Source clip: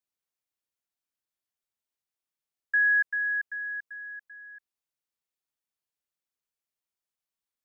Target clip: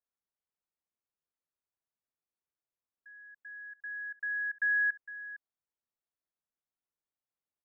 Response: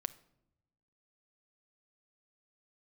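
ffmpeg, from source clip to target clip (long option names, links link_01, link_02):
-filter_complex "[0:a]areverse,lowpass=1500,asplit=2[link_01][link_02];[link_02]aecho=0:1:458:0.178[link_03];[link_01][link_03]amix=inputs=2:normalize=0,volume=-2dB"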